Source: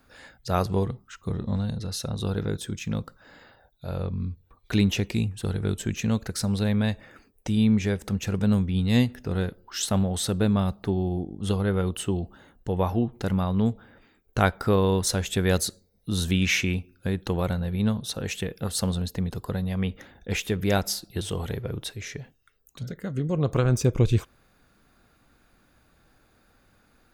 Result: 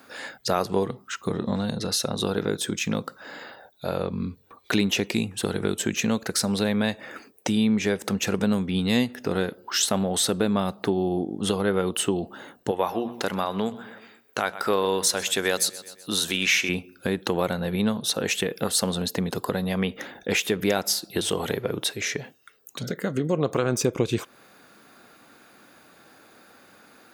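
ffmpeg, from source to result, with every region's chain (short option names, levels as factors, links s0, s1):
-filter_complex "[0:a]asettb=1/sr,asplit=3[s0][s1][s2];[s0]atrim=end=12.714[s3];[s1]atrim=start=12.71:end=16.69,asetpts=PTS-STARTPTS,afade=t=in:d=0.004:c=qsin,afade=t=out:st=3.976:d=0.004:c=qsin,lowshelf=f=390:g=-10.5,bandreject=f=60:t=h:w=6,bandreject=f=120:t=h:w=6,bandreject=f=180:t=h:w=6,bandreject=f=240:t=h:w=6,aecho=1:1:126|252|378|504:0.1|0.048|0.023|0.0111,atrim=end_sample=175518[s4];[s2]atrim=start=16.686[s5];[s3][s4]acrossfade=d=0.004:c1=hsin:c2=qsin[s6];[s6][s5]acrossfade=d=0.004:c1=qsin:c2=hsin,highpass=250,acompressor=threshold=0.0158:ratio=2,alimiter=level_in=9.44:limit=0.891:release=50:level=0:latency=1,volume=0.398"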